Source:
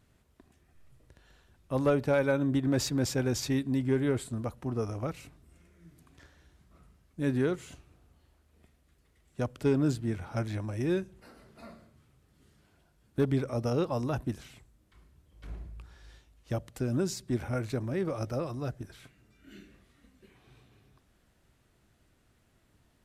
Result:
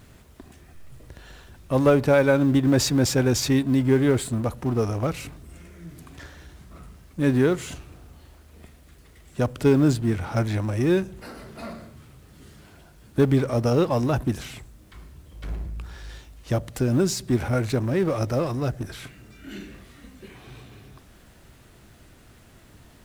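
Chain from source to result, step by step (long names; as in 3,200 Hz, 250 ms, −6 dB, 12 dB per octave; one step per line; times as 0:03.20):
mu-law and A-law mismatch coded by mu
level +7.5 dB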